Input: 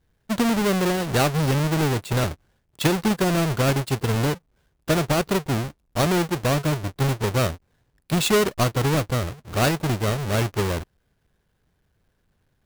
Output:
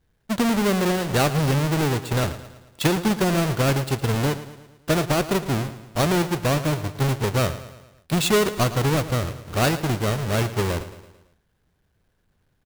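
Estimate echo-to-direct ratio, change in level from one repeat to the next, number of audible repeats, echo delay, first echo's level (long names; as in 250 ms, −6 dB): −12.5 dB, −5.5 dB, 4, 111 ms, −14.0 dB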